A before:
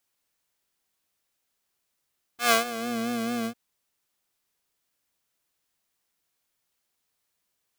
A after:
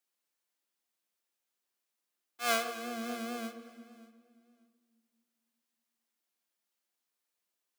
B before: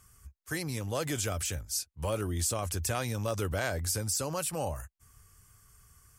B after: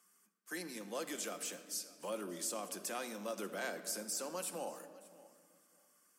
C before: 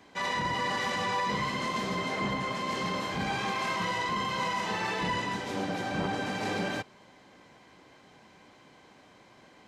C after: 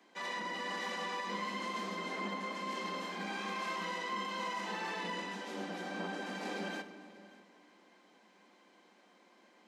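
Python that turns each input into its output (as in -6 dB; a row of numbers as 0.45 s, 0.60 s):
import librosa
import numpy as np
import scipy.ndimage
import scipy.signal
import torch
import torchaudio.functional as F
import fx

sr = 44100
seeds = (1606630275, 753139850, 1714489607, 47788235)

p1 = scipy.signal.sosfilt(scipy.signal.butter(12, 190.0, 'highpass', fs=sr, output='sos'), x)
p2 = p1 + fx.echo_feedback(p1, sr, ms=585, feedback_pct=17, wet_db=-21.0, dry=0)
p3 = fx.room_shoebox(p2, sr, seeds[0], volume_m3=3000.0, walls='mixed', distance_m=0.86)
y = F.gain(torch.from_numpy(p3), -8.5).numpy()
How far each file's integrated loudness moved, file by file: -8.0 LU, -9.0 LU, -8.0 LU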